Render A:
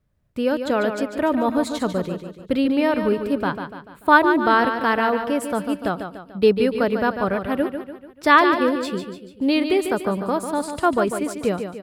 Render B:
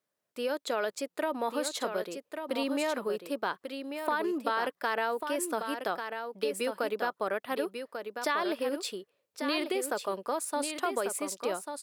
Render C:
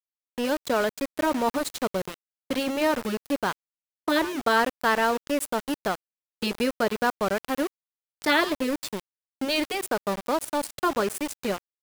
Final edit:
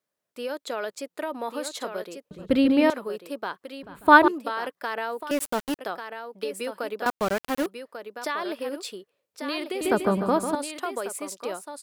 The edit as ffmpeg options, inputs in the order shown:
-filter_complex "[0:a]asplit=3[a][b][c];[2:a]asplit=2[d][e];[1:a]asplit=6[f][g][h][i][j][k];[f]atrim=end=2.312[l];[a]atrim=start=2.308:end=2.902[m];[g]atrim=start=2.898:end=3.832[n];[b]atrim=start=3.828:end=4.282[o];[h]atrim=start=4.278:end=5.312[p];[d]atrim=start=5.308:end=5.792[q];[i]atrim=start=5.788:end=7.062[r];[e]atrim=start=7.058:end=7.662[s];[j]atrim=start=7.658:end=9.812[t];[c]atrim=start=9.808:end=10.552[u];[k]atrim=start=10.548[v];[l][m]acrossfade=d=0.004:c1=hsin:c2=hsin[w];[w][n]acrossfade=d=0.004:c1=hsin:c2=hsin[x];[x][o]acrossfade=d=0.004:c1=hsin:c2=hsin[y];[y][p]acrossfade=d=0.004:c1=hsin:c2=hsin[z];[z][q]acrossfade=d=0.004:c1=hsin:c2=hsin[aa];[aa][r]acrossfade=d=0.004:c1=hsin:c2=hsin[ab];[ab][s]acrossfade=d=0.004:c1=hsin:c2=hsin[ac];[ac][t]acrossfade=d=0.004:c1=hsin:c2=hsin[ad];[ad][u]acrossfade=d=0.004:c1=hsin:c2=hsin[ae];[ae][v]acrossfade=d=0.004:c1=hsin:c2=hsin"

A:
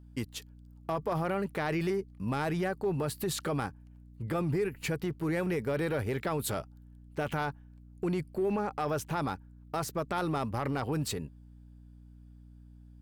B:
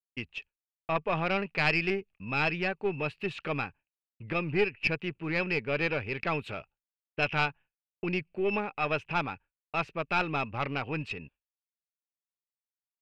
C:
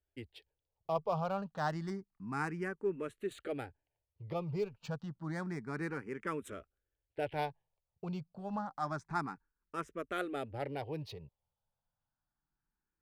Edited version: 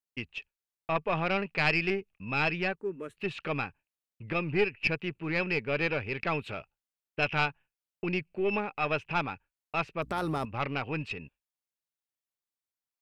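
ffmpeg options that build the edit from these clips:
-filter_complex "[1:a]asplit=3[a][b][c];[a]atrim=end=2.762[d];[2:a]atrim=start=2.758:end=3.172[e];[b]atrim=start=3.168:end=10.022[f];[0:a]atrim=start=10.018:end=10.452[g];[c]atrim=start=10.448[h];[d][e]acrossfade=d=0.004:c1=hsin:c2=hsin[i];[i][f]acrossfade=d=0.004:c1=hsin:c2=hsin[j];[j][g]acrossfade=d=0.004:c1=hsin:c2=hsin[k];[k][h]acrossfade=d=0.004:c1=hsin:c2=hsin"

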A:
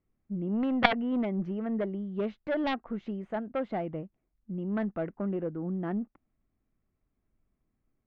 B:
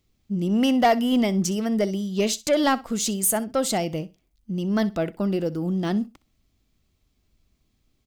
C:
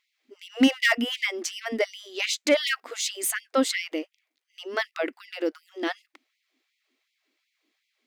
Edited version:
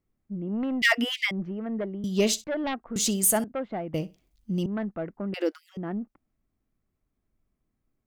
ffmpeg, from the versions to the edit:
-filter_complex "[2:a]asplit=2[a][b];[1:a]asplit=3[c][d][e];[0:a]asplit=6[f][g][h][i][j][k];[f]atrim=end=0.822[l];[a]atrim=start=0.818:end=1.312[m];[g]atrim=start=1.308:end=2.042[n];[c]atrim=start=2.038:end=2.442[o];[h]atrim=start=2.438:end=2.962[p];[d]atrim=start=2.958:end=3.442[q];[i]atrim=start=3.438:end=3.942[r];[e]atrim=start=3.938:end=4.662[s];[j]atrim=start=4.658:end=5.342[t];[b]atrim=start=5.338:end=5.772[u];[k]atrim=start=5.768[v];[l][m]acrossfade=d=0.004:c1=hsin:c2=hsin[w];[w][n]acrossfade=d=0.004:c1=hsin:c2=hsin[x];[x][o]acrossfade=d=0.004:c1=hsin:c2=hsin[y];[y][p]acrossfade=d=0.004:c1=hsin:c2=hsin[z];[z][q]acrossfade=d=0.004:c1=hsin:c2=hsin[aa];[aa][r]acrossfade=d=0.004:c1=hsin:c2=hsin[ab];[ab][s]acrossfade=d=0.004:c1=hsin:c2=hsin[ac];[ac][t]acrossfade=d=0.004:c1=hsin:c2=hsin[ad];[ad][u]acrossfade=d=0.004:c1=hsin:c2=hsin[ae];[ae][v]acrossfade=d=0.004:c1=hsin:c2=hsin"

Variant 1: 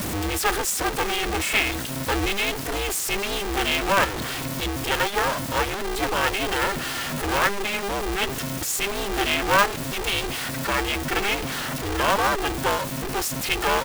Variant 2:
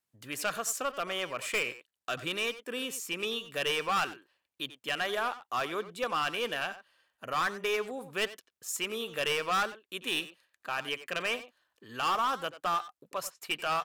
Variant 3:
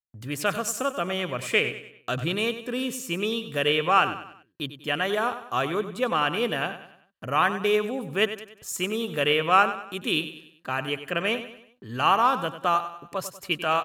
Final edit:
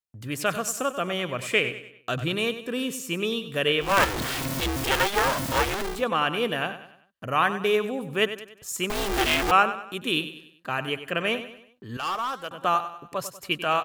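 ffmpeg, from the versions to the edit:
-filter_complex "[0:a]asplit=2[a][b];[2:a]asplit=4[c][d][e][f];[c]atrim=end=4.01[g];[a]atrim=start=3.77:end=6.05[h];[d]atrim=start=5.81:end=8.902[i];[b]atrim=start=8.898:end=9.512[j];[e]atrim=start=9.508:end=11.972[k];[1:a]atrim=start=11.968:end=12.512[l];[f]atrim=start=12.508[m];[g][h]acrossfade=d=0.24:c1=tri:c2=tri[n];[n][i]acrossfade=d=0.24:c1=tri:c2=tri[o];[o][j]acrossfade=d=0.004:c1=hsin:c2=hsin[p];[p][k]acrossfade=d=0.004:c1=hsin:c2=hsin[q];[q][l]acrossfade=d=0.004:c1=hsin:c2=hsin[r];[r][m]acrossfade=d=0.004:c1=hsin:c2=hsin"

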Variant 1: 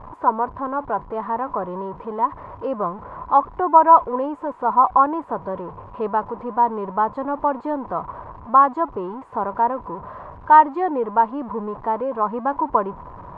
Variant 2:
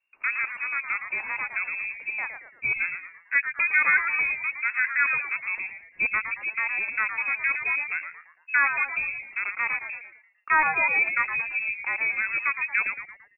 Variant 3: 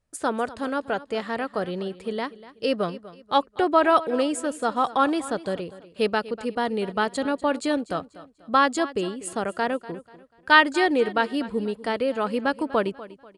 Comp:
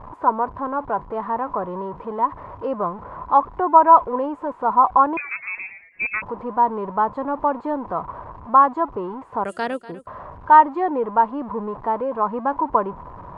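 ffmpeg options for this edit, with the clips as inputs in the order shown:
-filter_complex "[0:a]asplit=3[a][b][c];[a]atrim=end=5.172[d];[1:a]atrim=start=5.168:end=6.222[e];[b]atrim=start=6.218:end=9.442[f];[2:a]atrim=start=9.438:end=10.072[g];[c]atrim=start=10.068[h];[d][e]acrossfade=d=0.004:c1=hsin:c2=hsin[i];[i][f]acrossfade=d=0.004:c1=hsin:c2=hsin[j];[j][g]acrossfade=d=0.004:c1=hsin:c2=hsin[k];[k][h]acrossfade=d=0.004:c1=hsin:c2=hsin"

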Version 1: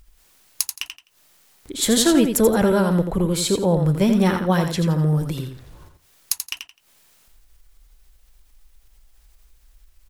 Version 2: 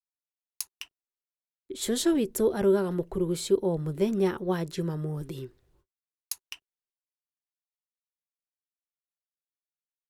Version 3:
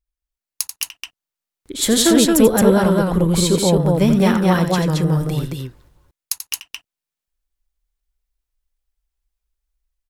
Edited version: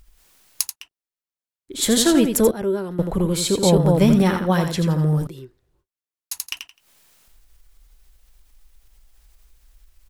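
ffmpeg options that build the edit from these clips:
-filter_complex "[1:a]asplit=3[a][b][c];[0:a]asplit=5[d][e][f][g][h];[d]atrim=end=0.77[i];[a]atrim=start=0.67:end=1.78[j];[e]atrim=start=1.68:end=2.512[k];[b]atrim=start=2.508:end=2.992[l];[f]atrim=start=2.988:end=3.632[m];[2:a]atrim=start=3.628:end=4.222[n];[g]atrim=start=4.218:end=5.272[o];[c]atrim=start=5.268:end=6.322[p];[h]atrim=start=6.318[q];[i][j]acrossfade=d=0.1:c1=tri:c2=tri[r];[r][k]acrossfade=d=0.1:c1=tri:c2=tri[s];[s][l]acrossfade=d=0.004:c1=hsin:c2=hsin[t];[t][m]acrossfade=d=0.004:c1=hsin:c2=hsin[u];[u][n]acrossfade=d=0.004:c1=hsin:c2=hsin[v];[v][o]acrossfade=d=0.004:c1=hsin:c2=hsin[w];[w][p]acrossfade=d=0.004:c1=hsin:c2=hsin[x];[x][q]acrossfade=d=0.004:c1=hsin:c2=hsin"

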